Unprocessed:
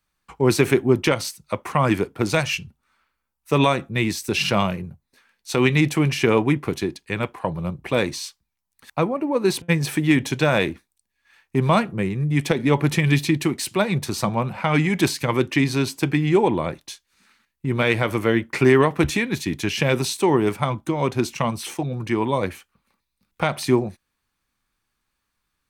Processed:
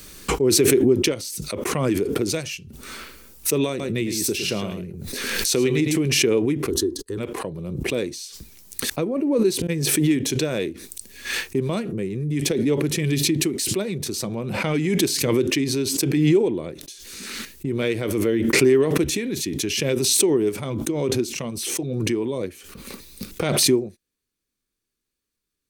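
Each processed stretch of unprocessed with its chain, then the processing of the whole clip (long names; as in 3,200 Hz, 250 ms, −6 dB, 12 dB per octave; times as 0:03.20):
0:03.69–0:06.01: upward compression, threshold −20 dBFS + single-tap delay 108 ms −8 dB
0:06.70–0:07.18: noise gate −50 dBFS, range −40 dB + low-shelf EQ 220 Hz +11 dB + phaser with its sweep stopped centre 630 Hz, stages 6
whole clip: drawn EQ curve 150 Hz 0 dB, 420 Hz +9 dB, 850 Hz −9 dB, 6,100 Hz +6 dB; background raised ahead of every attack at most 26 dB per second; level −8.5 dB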